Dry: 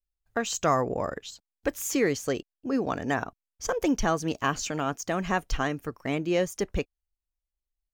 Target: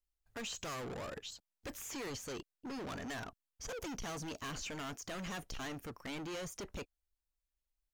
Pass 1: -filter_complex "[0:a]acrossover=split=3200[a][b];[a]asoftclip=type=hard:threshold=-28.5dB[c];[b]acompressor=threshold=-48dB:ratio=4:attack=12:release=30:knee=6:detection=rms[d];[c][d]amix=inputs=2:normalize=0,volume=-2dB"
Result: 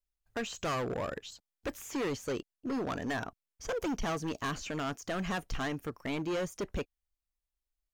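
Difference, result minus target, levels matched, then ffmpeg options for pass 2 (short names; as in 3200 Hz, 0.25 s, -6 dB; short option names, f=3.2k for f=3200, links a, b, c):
hard clip: distortion -5 dB
-filter_complex "[0:a]acrossover=split=3200[a][b];[a]asoftclip=type=hard:threshold=-39.5dB[c];[b]acompressor=threshold=-48dB:ratio=4:attack=12:release=30:knee=6:detection=rms[d];[c][d]amix=inputs=2:normalize=0,volume=-2dB"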